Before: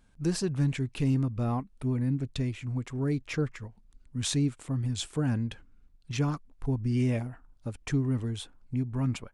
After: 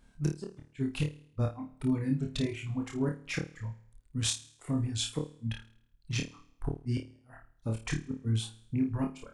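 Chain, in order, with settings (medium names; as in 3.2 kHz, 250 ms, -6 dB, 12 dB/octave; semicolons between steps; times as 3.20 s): inverted gate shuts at -20 dBFS, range -34 dB; flutter echo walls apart 4.6 m, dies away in 0.65 s; reverb removal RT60 1.4 s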